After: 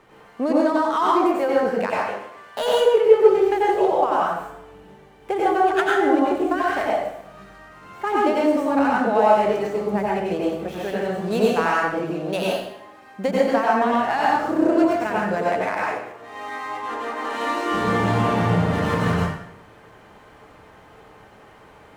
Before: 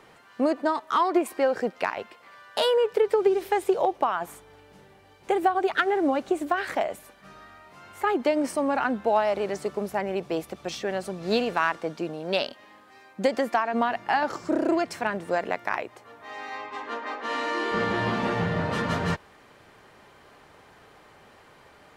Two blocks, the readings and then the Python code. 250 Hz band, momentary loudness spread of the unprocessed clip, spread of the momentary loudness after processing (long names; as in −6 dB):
+6.5 dB, 11 LU, 11 LU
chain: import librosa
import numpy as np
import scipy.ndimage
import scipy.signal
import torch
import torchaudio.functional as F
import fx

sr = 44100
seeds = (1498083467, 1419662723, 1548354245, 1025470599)

y = scipy.signal.medfilt(x, 9)
y = fx.low_shelf(y, sr, hz=140.0, db=5.0)
y = fx.rev_plate(y, sr, seeds[0], rt60_s=0.76, hf_ratio=0.8, predelay_ms=80, drr_db=-5.0)
y = F.gain(torch.from_numpy(y), -1.0).numpy()